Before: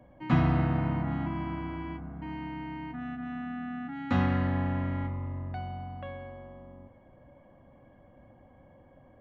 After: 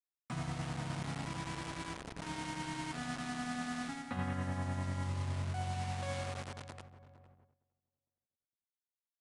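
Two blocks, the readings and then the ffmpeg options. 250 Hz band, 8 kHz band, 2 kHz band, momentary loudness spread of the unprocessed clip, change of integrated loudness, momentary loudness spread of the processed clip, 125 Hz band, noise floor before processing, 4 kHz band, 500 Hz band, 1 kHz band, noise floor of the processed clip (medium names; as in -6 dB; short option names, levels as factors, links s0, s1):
-10.5 dB, no reading, -3.0 dB, 15 LU, -8.0 dB, 7 LU, -8.0 dB, -58 dBFS, +4.5 dB, -6.5 dB, -5.0 dB, under -85 dBFS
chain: -filter_complex "[0:a]highpass=f=78:w=0.5412,highpass=f=78:w=1.3066,bandreject=f=50:t=h:w=6,bandreject=f=100:t=h:w=6,bandreject=f=150:t=h:w=6,bandreject=f=200:t=h:w=6,bandreject=f=250:t=h:w=6,bandreject=f=300:t=h:w=6,bandreject=f=350:t=h:w=6,aeval=exprs='sgn(val(0))*max(abs(val(0))-0.00237,0)':c=same,dynaudnorm=f=600:g=7:m=5.62,equalizer=f=310:w=1.5:g=-6,tremolo=f=10:d=0.51,acrusher=bits=5:mix=0:aa=0.000001,areverse,acompressor=threshold=0.0316:ratio=5,areverse,asplit=2[s0][s1];[s1]adelay=458,lowpass=f=1100:p=1,volume=0.211,asplit=2[s2][s3];[s3]adelay=458,lowpass=f=1100:p=1,volume=0.42,asplit=2[s4][s5];[s5]adelay=458,lowpass=f=1100:p=1,volume=0.42,asplit=2[s6][s7];[s7]adelay=458,lowpass=f=1100:p=1,volume=0.42[s8];[s0][s2][s4][s6][s8]amix=inputs=5:normalize=0,aresample=22050,aresample=44100,agate=range=0.158:threshold=0.00112:ratio=16:detection=peak,volume=0.531"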